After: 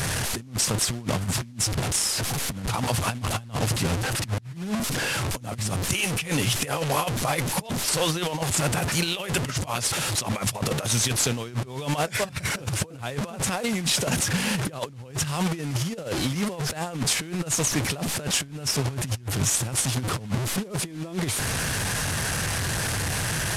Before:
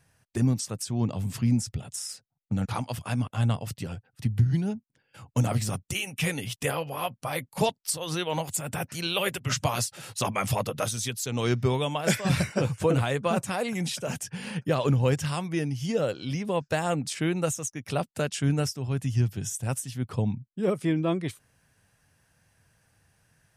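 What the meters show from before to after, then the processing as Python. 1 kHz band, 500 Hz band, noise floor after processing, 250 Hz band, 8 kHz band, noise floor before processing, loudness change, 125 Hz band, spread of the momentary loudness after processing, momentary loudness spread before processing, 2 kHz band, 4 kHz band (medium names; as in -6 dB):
+2.5 dB, -1.5 dB, -41 dBFS, 0.0 dB, +9.5 dB, -75 dBFS, +3.0 dB, 0.0 dB, 6 LU, 8 LU, +6.0 dB, +8.0 dB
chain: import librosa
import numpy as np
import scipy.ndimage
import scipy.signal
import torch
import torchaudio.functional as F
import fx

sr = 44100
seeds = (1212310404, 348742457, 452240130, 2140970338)

y = fx.delta_mod(x, sr, bps=64000, step_db=-31.0)
y = fx.over_compress(y, sr, threshold_db=-32.0, ratio=-0.5)
y = y * librosa.db_to_amplitude(6.0)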